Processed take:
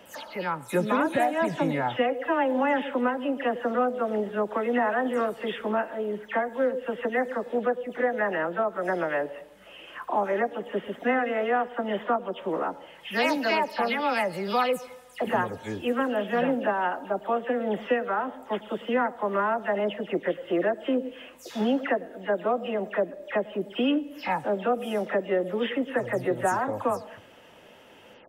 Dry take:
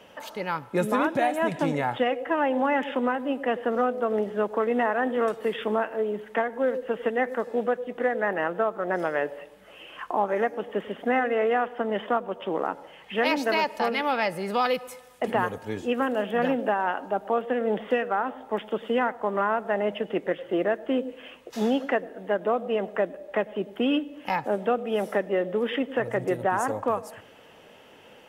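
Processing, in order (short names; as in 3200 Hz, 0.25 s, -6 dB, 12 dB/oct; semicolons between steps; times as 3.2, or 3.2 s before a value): spectral delay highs early, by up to 0.148 s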